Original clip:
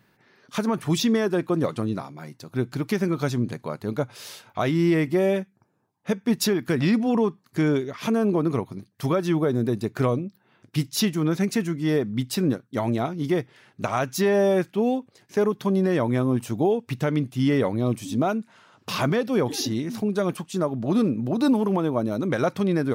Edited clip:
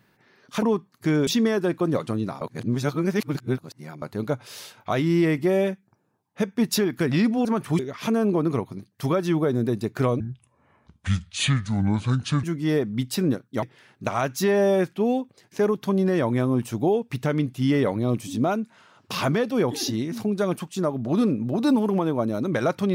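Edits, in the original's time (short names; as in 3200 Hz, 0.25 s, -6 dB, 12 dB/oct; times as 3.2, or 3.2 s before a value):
0.62–0.96 swap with 7.14–7.79
2.1–3.71 reverse
10.2–11.63 speed 64%
12.82–13.4 cut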